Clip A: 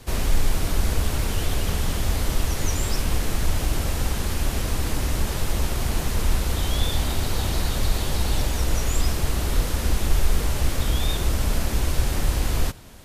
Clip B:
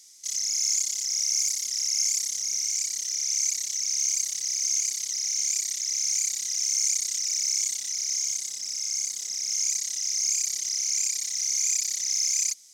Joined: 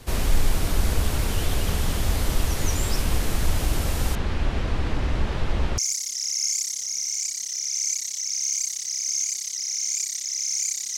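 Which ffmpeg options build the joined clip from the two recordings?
-filter_complex "[0:a]asettb=1/sr,asplit=3[a][b][c];[a]atrim=end=4.154[d];[b]atrim=start=4.15:end=5.78,asetpts=PTS-STARTPTS,afade=t=in:d=0.004:c=qsin,afade=t=out:st=1.626:d=0.004:c=qsin,lowpass=3.2k[e];[c]atrim=start=5.776[f];[d][e]acrossfade=d=0.004:c1=hsin:c2=qsin[g];[g][f]acrossfade=d=0.004:c1=qsin:c2=hsin,apad=whole_dur=10.97,atrim=end=10.97,atrim=end=5.782[h];[1:a]atrim=start=1.338:end=6.53[i];[h][i]acrossfade=d=0.004:c1=hsin:c2=hsin"

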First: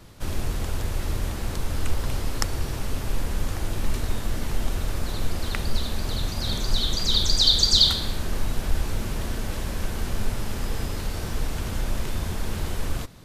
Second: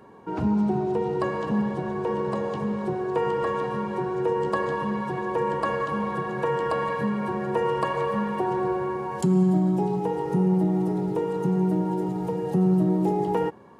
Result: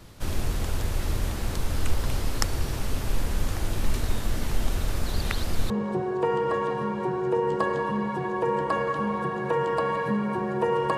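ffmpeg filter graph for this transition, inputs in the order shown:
-filter_complex "[0:a]apad=whole_dur=10.97,atrim=end=10.97,asplit=2[a][b];[a]atrim=end=5.162[c];[b]atrim=start=5.158:end=5.702,asetpts=PTS-STARTPTS,areverse[d];[1:a]atrim=start=2.628:end=7.9[e];[c][d]acrossfade=d=0.004:c1=hsin:c2=hsin[f];[f][e]acrossfade=d=0.004:c1=hsin:c2=hsin"

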